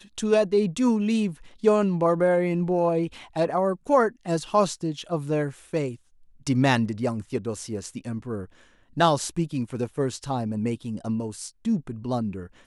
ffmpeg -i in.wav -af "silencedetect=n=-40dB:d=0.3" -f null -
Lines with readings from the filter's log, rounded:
silence_start: 5.96
silence_end: 6.47 | silence_duration: 0.51
silence_start: 8.46
silence_end: 8.97 | silence_duration: 0.51